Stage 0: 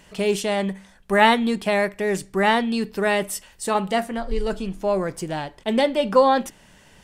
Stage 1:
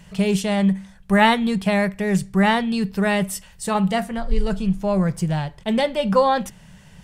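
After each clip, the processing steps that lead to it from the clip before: resonant low shelf 220 Hz +7 dB, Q 3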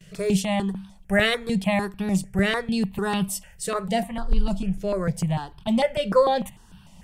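gate with hold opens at -41 dBFS; step phaser 6.7 Hz 240–2000 Hz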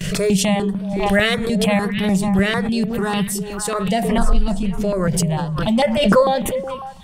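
delay with a stepping band-pass 0.183 s, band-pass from 150 Hz, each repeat 1.4 oct, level -4.5 dB; backwards sustainer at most 35 dB/s; gain +3.5 dB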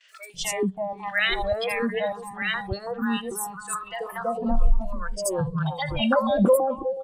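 spectral noise reduction 21 dB; three bands offset in time mids, highs, lows 80/330 ms, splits 880/5700 Hz; gain -3 dB

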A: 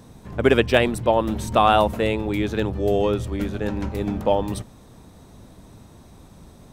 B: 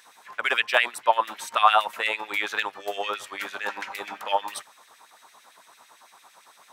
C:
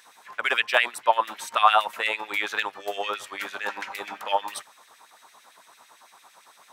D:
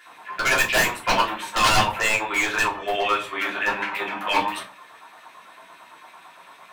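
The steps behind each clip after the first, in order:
vocal rider within 3 dB 0.5 s; LFO high-pass sine 8.9 Hz 900–2300 Hz
nothing audible
resonant high shelf 3800 Hz -7 dB, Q 1.5; wavefolder -19 dBFS; shoebox room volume 140 m³, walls furnished, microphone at 3.1 m

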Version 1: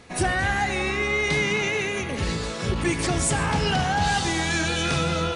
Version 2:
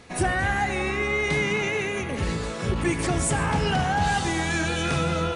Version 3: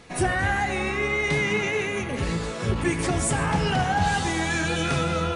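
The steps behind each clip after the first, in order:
dynamic EQ 4600 Hz, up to -6 dB, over -43 dBFS, Q 0.93
flange 0.84 Hz, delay 5.6 ms, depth 6.4 ms, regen +65%; gain +4.5 dB

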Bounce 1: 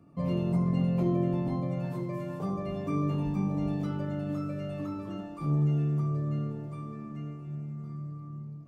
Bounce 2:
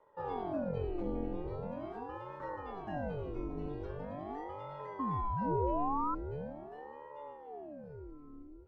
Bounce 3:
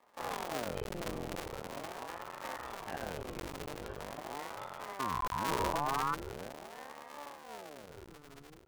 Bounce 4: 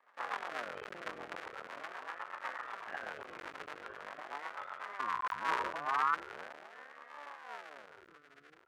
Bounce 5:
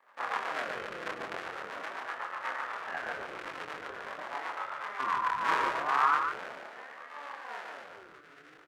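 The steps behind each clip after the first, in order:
LPF 3800 Hz 12 dB/oct; painted sound rise, 4.99–6.15, 390–1200 Hz -25 dBFS; ring modulator with a swept carrier 430 Hz, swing 70%, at 0.42 Hz; gain -6.5 dB
cycle switcher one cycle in 2, muted; tilt shelf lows -5.5 dB, about 680 Hz; gain +2 dB
band-pass 1500 Hz, Q 1.6; rotary speaker horn 8 Hz, later 0.75 Hz, at 4.89; gain +8 dB
chorus 1.4 Hz, depth 8 ms; echo 0.145 s -6 dB; gain +8 dB

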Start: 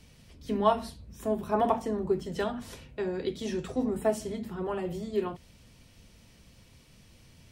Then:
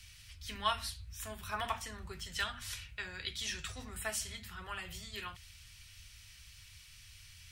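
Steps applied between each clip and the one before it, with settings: EQ curve 100 Hz 0 dB, 160 Hz -16 dB, 270 Hz -24 dB, 420 Hz -24 dB, 870 Hz -12 dB, 1400 Hz +2 dB, 2500 Hz +6 dB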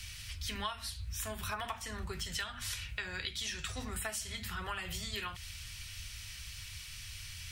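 compressor 8:1, threshold -45 dBFS, peak gain reduction 18 dB; gain +9.5 dB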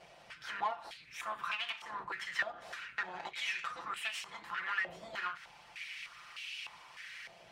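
minimum comb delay 5.8 ms; stepped band-pass 3.3 Hz 660–2700 Hz; gain +12.5 dB

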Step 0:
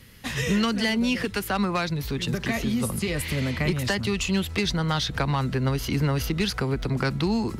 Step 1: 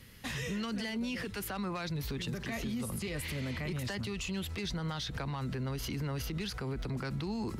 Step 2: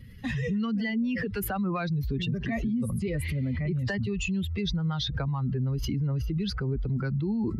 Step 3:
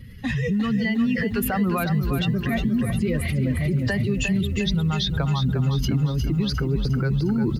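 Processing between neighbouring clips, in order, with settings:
limiter -24.5 dBFS, peak gain reduction 10 dB; gain -4.5 dB
spectral contrast raised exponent 1.9; gain +8 dB
outdoor echo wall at 37 m, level -29 dB; lo-fi delay 0.355 s, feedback 55%, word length 10-bit, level -7.5 dB; gain +5.5 dB

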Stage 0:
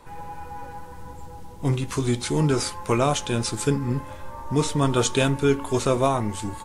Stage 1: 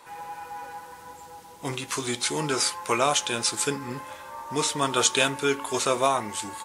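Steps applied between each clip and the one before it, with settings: HPF 1100 Hz 6 dB/oct; gain +4.5 dB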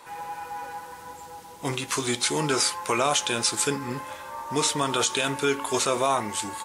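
limiter -14.5 dBFS, peak gain reduction 10 dB; gain +2.5 dB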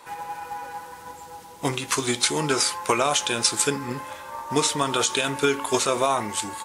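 transient shaper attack +6 dB, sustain +2 dB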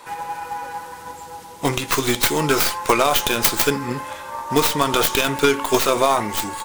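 tracing distortion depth 0.28 ms; gain +5 dB

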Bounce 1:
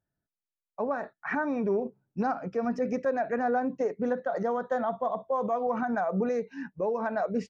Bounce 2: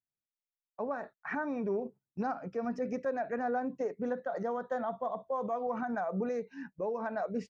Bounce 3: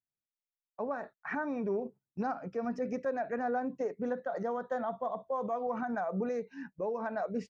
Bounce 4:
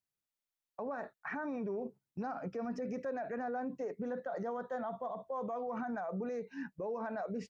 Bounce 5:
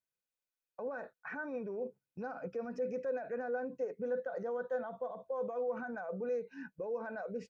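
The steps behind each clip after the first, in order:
gate -45 dBFS, range -13 dB; gain -5.5 dB
nothing audible
limiter -33 dBFS, peak gain reduction 8.5 dB; gain +1.5 dB
small resonant body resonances 500/1500/2500 Hz, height 11 dB; gain -5 dB

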